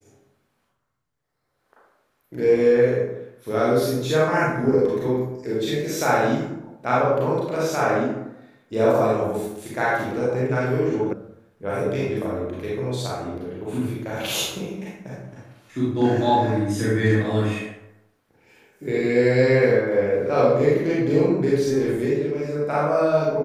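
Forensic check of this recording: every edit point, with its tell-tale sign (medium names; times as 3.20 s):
11.13 s: sound stops dead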